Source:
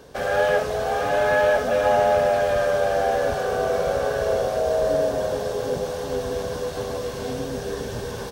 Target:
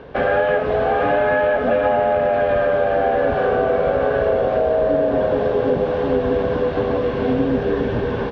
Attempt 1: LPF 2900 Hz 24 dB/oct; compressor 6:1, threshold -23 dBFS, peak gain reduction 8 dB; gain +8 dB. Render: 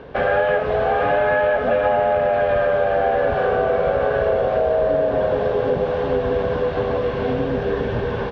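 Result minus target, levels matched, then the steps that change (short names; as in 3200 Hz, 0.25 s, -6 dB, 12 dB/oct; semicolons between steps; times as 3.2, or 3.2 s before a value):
250 Hz band -4.5 dB
add after compressor: dynamic EQ 280 Hz, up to +7 dB, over -48 dBFS, Q 2.1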